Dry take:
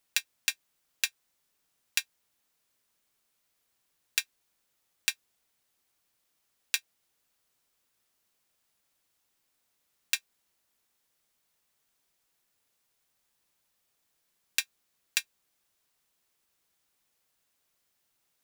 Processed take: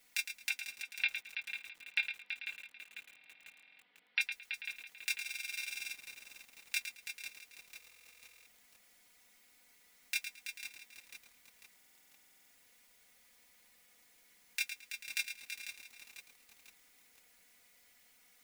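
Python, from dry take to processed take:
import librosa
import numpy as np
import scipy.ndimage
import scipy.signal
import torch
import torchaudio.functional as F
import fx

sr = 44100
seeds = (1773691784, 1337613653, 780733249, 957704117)

y = fx.ellip_bandpass(x, sr, low_hz=180.0, high_hz=3400.0, order=3, stop_db=40, at=(0.49, 4.21))
y = y + 0.85 * np.pad(y, (int(4.1 * sr / 1000.0), 0))[:len(y)]
y = fx.over_compress(y, sr, threshold_db=-33.0, ratio=-1.0)
y = fx.echo_heads(y, sr, ms=110, heads='first and third', feedback_pct=45, wet_db=-9)
y = fx.spec_gate(y, sr, threshold_db=-30, keep='strong')
y = fx.peak_eq(y, sr, hz=2100.0, db=10.0, octaves=0.33)
y = fx.notch(y, sr, hz=1100.0, q=7.8)
y = fx.buffer_glitch(y, sr, at_s=(3.07, 5.2, 7.72, 11.76), block=2048, repeats=15)
y = fx.echo_crushed(y, sr, ms=496, feedback_pct=55, bits=8, wet_db=-9.5)
y = y * 10.0 ** (-1.0 / 20.0)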